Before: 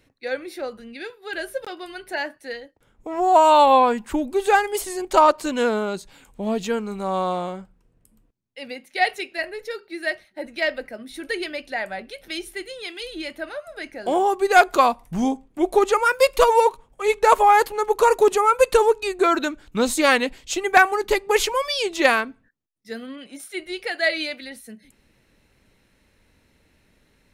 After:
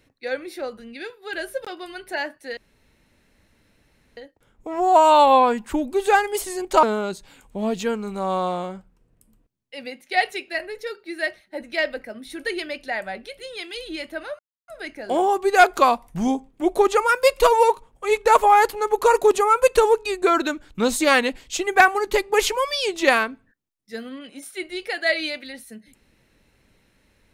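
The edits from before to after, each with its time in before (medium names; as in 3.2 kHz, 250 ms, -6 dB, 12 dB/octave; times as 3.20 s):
2.57 s: insert room tone 1.60 s
5.23–5.67 s: delete
12.23–12.65 s: delete
13.65 s: insert silence 0.29 s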